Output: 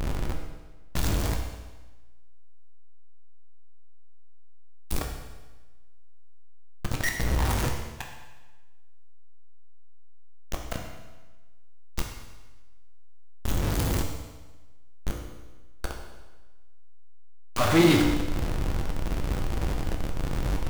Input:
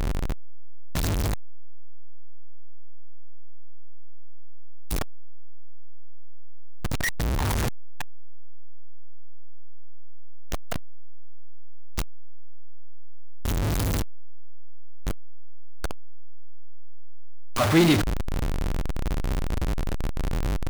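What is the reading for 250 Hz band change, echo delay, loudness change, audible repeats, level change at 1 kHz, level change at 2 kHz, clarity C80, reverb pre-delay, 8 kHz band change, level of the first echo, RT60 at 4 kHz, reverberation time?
0.0 dB, no echo audible, −1.0 dB, no echo audible, 0.0 dB, −0.5 dB, 6.5 dB, 14 ms, −0.5 dB, no echo audible, 1.2 s, 1.2 s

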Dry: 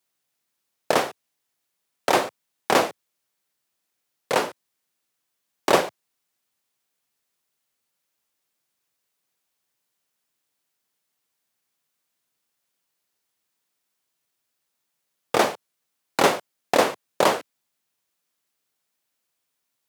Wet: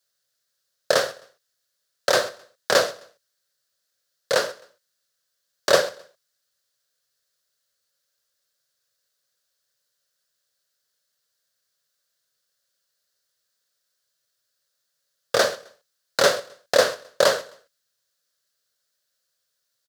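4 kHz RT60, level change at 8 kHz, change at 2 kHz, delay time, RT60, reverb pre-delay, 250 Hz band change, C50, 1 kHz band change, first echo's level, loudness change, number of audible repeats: no reverb audible, +3.5 dB, +2.5 dB, 131 ms, no reverb audible, no reverb audible, −8.5 dB, no reverb audible, −4.5 dB, −21.5 dB, +1.0 dB, 2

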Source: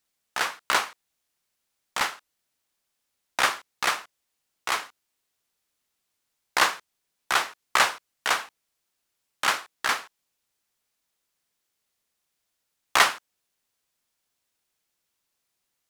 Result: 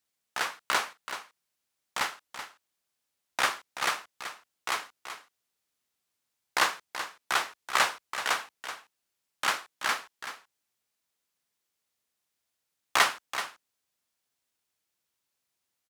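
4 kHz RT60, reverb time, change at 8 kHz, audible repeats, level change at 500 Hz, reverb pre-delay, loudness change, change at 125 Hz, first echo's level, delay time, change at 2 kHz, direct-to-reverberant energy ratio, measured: no reverb audible, no reverb audible, −3.5 dB, 1, −3.5 dB, no reverb audible, −5.0 dB, −4.0 dB, −10.5 dB, 380 ms, −3.5 dB, no reverb audible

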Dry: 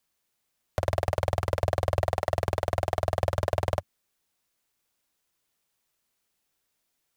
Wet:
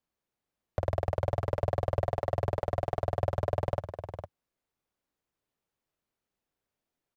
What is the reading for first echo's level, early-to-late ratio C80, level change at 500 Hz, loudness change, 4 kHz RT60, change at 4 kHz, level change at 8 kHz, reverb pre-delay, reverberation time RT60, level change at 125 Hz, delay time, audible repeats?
−10.0 dB, no reverb audible, −2.5 dB, −3.5 dB, no reverb audible, −11.5 dB, below −10 dB, no reverb audible, no reverb audible, −2.0 dB, 457 ms, 1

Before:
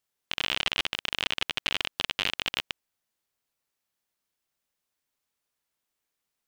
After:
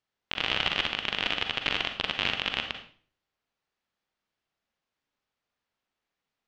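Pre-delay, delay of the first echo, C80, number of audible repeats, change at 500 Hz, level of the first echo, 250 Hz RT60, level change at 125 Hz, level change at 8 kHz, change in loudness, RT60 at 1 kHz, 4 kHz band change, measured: 37 ms, no echo audible, 11.5 dB, no echo audible, +3.5 dB, no echo audible, 0.55 s, +3.5 dB, −8.0 dB, +0.5 dB, 0.40 s, 0.0 dB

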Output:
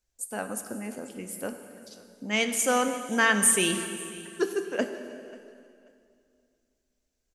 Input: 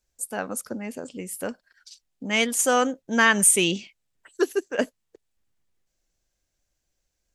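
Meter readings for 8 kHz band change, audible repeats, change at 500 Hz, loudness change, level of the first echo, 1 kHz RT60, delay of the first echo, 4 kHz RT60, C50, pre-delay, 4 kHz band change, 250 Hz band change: −3.5 dB, 2, −3.5 dB, −4.0 dB, −22.0 dB, 2.4 s, 537 ms, 2.3 s, 8.0 dB, 3 ms, −3.5 dB, −3.0 dB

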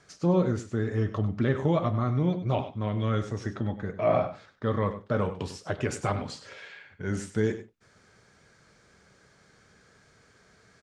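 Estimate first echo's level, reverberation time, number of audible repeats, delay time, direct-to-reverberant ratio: −12.5 dB, no reverb audible, 1, 98 ms, no reverb audible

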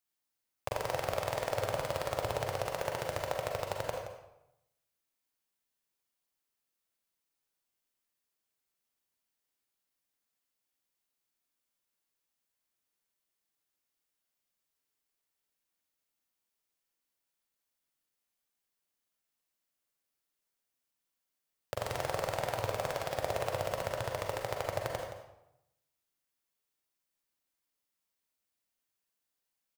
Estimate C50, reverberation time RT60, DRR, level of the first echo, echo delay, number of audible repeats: 2.0 dB, 0.85 s, 0.5 dB, −12.0 dB, 172 ms, 1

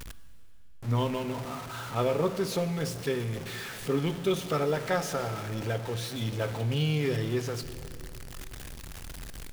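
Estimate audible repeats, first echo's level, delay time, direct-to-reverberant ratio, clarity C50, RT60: no echo audible, no echo audible, no echo audible, 11.5 dB, 12.0 dB, 3.0 s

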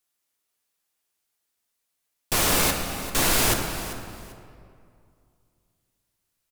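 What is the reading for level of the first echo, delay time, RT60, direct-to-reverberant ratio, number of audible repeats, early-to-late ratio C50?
−13.5 dB, 393 ms, 2.4 s, 2.5 dB, 2, 4.5 dB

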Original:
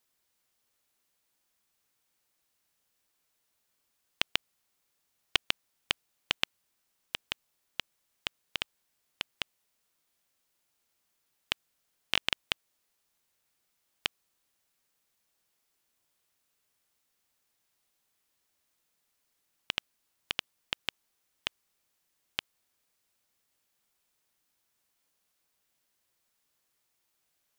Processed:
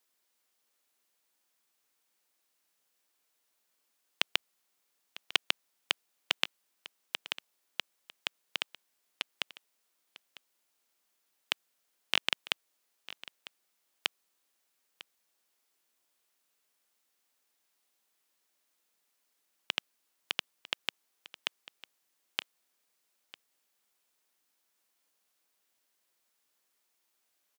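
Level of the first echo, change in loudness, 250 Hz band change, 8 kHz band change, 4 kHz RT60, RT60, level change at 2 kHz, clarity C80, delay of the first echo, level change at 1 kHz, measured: −18.0 dB, 0.0 dB, −2.5 dB, 0.0 dB, no reverb audible, no reverb audible, 0.0 dB, no reverb audible, 950 ms, 0.0 dB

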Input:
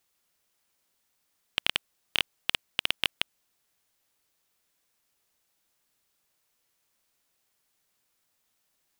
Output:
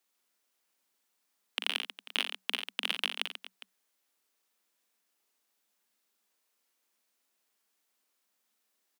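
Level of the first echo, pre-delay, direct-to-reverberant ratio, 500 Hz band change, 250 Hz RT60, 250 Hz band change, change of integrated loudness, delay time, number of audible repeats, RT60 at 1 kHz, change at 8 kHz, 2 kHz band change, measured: −7.0 dB, no reverb audible, no reverb audible, −3.0 dB, no reverb audible, −3.5 dB, −3.0 dB, 41 ms, 4, no reverb audible, −3.5 dB, −3.0 dB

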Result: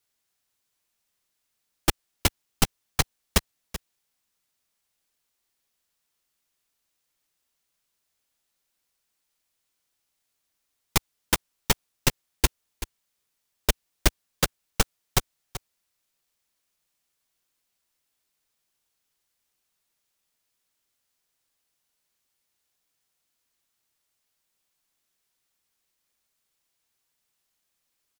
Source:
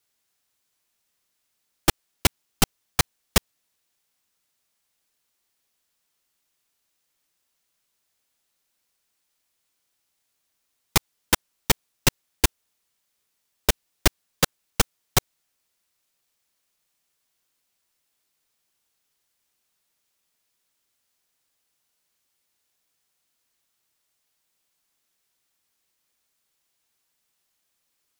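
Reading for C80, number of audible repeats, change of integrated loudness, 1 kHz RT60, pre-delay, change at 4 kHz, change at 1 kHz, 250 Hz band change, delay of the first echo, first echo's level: no reverb audible, 1, −2.5 dB, no reverb audible, no reverb audible, −3.0 dB, −3.0 dB, −2.5 dB, 383 ms, −13.5 dB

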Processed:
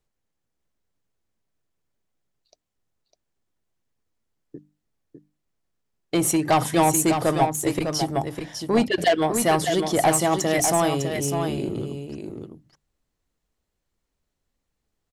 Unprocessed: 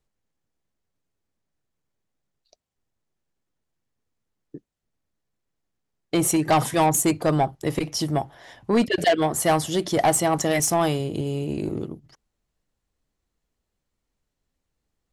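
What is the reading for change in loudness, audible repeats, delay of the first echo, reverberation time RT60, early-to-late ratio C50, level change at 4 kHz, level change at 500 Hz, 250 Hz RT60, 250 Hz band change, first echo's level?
+0.5 dB, 1, 603 ms, no reverb audible, no reverb audible, +1.0 dB, +1.0 dB, no reverb audible, +0.5 dB, −6.5 dB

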